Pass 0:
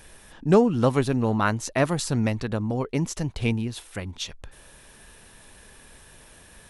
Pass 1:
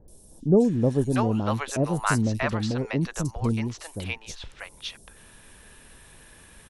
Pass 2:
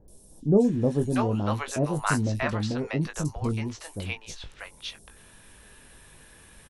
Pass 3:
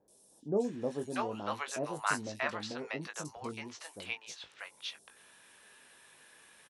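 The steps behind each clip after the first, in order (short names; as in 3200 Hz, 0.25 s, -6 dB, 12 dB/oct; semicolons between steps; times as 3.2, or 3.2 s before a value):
three bands offset in time lows, highs, mids 80/640 ms, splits 650/5200 Hz
doubler 20 ms -8 dB; gain -2 dB
weighting filter A; gain -5 dB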